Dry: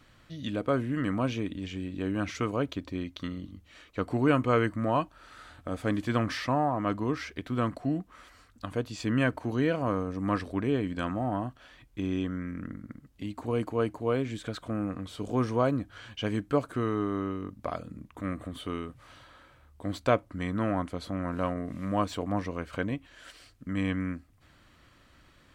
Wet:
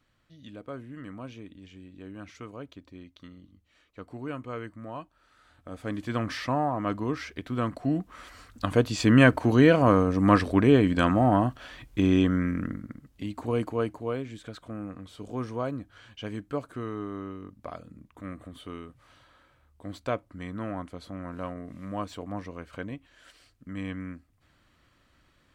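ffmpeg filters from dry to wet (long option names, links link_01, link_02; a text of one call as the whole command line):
ffmpeg -i in.wav -af "volume=9dB,afade=type=in:start_time=5.41:duration=1.05:silence=0.251189,afade=type=in:start_time=7.71:duration=0.96:silence=0.354813,afade=type=out:start_time=12.45:duration=0.46:silence=0.446684,afade=type=out:start_time=13.55:duration=0.72:silence=0.421697" out.wav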